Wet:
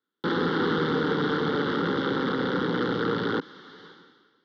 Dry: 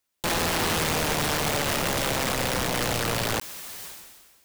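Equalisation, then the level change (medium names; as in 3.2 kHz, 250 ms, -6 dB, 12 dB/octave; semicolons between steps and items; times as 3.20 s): cabinet simulation 130–3900 Hz, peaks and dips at 170 Hz +7 dB, 270 Hz +5 dB, 460 Hz +7 dB, 750 Hz +8 dB, 1.4 kHz +10 dB, 3.4 kHz +7 dB; peaking EQ 360 Hz +14 dB 1.9 oct; static phaser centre 2.5 kHz, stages 6; -7.0 dB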